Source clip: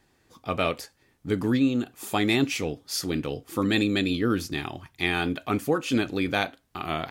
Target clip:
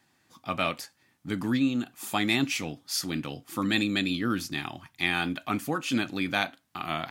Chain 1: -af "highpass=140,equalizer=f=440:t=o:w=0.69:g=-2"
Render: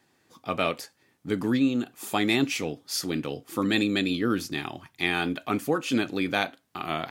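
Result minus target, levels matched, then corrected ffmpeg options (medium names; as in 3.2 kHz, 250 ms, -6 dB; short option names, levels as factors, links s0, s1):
500 Hz band +4.5 dB
-af "highpass=140,equalizer=f=440:t=o:w=0.69:g=-12"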